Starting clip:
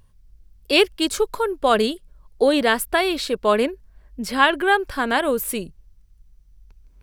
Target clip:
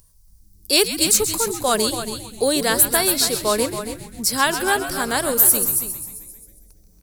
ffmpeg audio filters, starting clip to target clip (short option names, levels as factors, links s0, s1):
-filter_complex "[0:a]asplit=2[s0][s1];[s1]asplit=7[s2][s3][s4][s5][s6][s7][s8];[s2]adelay=133,afreqshift=-110,volume=0.282[s9];[s3]adelay=266,afreqshift=-220,volume=0.174[s10];[s4]adelay=399,afreqshift=-330,volume=0.108[s11];[s5]adelay=532,afreqshift=-440,volume=0.0668[s12];[s6]adelay=665,afreqshift=-550,volume=0.0417[s13];[s7]adelay=798,afreqshift=-660,volume=0.0257[s14];[s8]adelay=931,afreqshift=-770,volume=0.016[s15];[s9][s10][s11][s12][s13][s14][s15]amix=inputs=7:normalize=0[s16];[s0][s16]amix=inputs=2:normalize=0,aexciter=amount=6.8:drive=6.1:freq=4400,asplit=2[s17][s18];[s18]aecho=0:1:281:0.299[s19];[s17][s19]amix=inputs=2:normalize=0,asettb=1/sr,asplit=3[s20][s21][s22];[s20]atrim=end=0.734[s23];[s21]atrim=start=0.73:end=1.86,asetpts=PTS-STARTPTS,afade=t=in:d=0.004:c=qsin,afade=t=out:st=1.126:d=0.004:c=qsin,acrusher=bits=7:mode=log:mix=0:aa=0.000001[s24];[s22]atrim=start=1.856[s25];[s23][s24]acrossfade=d=0.004:c1=hsin:c2=qsin[s26];[s26][s25]acrossfade=d=0.004:c1=qsin:c2=hsin,alimiter=level_in=0.794:limit=0.891:release=50:level=0:latency=1,volume=0.891"